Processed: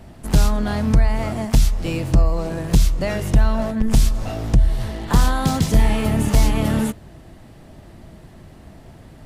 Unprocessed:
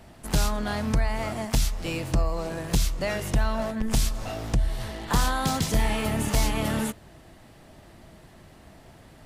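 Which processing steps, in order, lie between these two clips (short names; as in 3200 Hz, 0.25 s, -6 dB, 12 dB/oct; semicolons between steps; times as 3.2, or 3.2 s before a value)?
low shelf 460 Hz +8 dB; gain +1.5 dB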